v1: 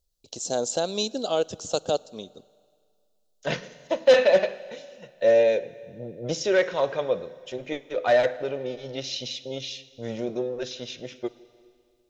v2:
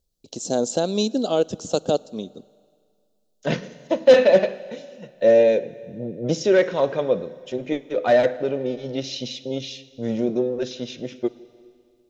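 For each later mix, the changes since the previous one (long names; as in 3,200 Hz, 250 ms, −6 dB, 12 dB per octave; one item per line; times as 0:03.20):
master: add parametric band 230 Hz +10.5 dB 1.9 octaves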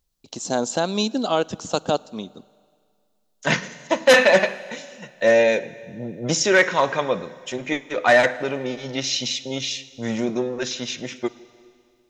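second voice: remove high-frequency loss of the air 170 metres
master: add octave-band graphic EQ 500/1,000/2,000 Hz −6/+9/+9 dB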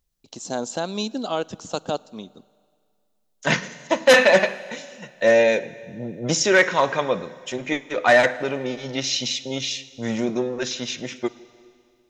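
first voice −4.5 dB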